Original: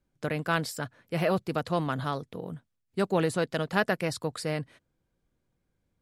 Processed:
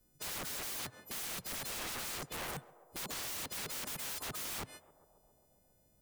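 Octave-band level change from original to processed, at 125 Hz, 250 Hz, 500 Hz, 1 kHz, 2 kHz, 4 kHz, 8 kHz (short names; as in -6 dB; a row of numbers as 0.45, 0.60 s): -19.5, -20.0, -20.5, -13.5, -11.0, -2.0, +4.5 dB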